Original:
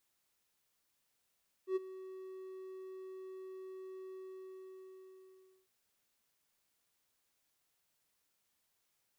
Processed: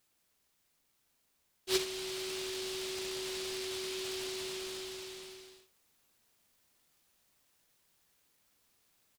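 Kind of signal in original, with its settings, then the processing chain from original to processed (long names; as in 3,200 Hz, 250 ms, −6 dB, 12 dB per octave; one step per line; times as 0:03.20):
note with an ADSR envelope triangle 377 Hz, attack 90 ms, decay 22 ms, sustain −16.5 dB, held 2.46 s, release 1,550 ms −27 dBFS
ambience of single reflections 53 ms −17 dB, 72 ms −17 dB
in parallel at +2 dB: speech leveller within 3 dB
on the sum: short delay modulated by noise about 3,600 Hz, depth 0.35 ms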